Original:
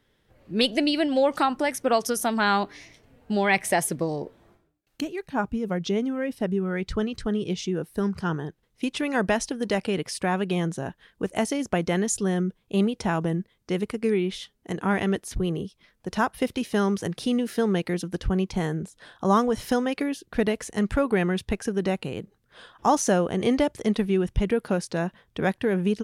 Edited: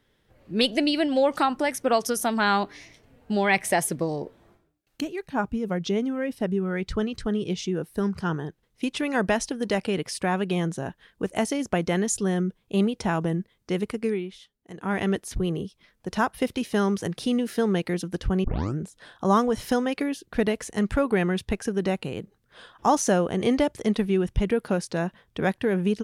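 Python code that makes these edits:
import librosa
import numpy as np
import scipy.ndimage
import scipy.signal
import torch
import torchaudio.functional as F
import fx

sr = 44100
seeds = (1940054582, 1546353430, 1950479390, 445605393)

y = fx.edit(x, sr, fx.fade_down_up(start_s=13.98, length_s=1.07, db=-11.5, fade_s=0.33),
    fx.tape_start(start_s=18.44, length_s=0.34), tone=tone)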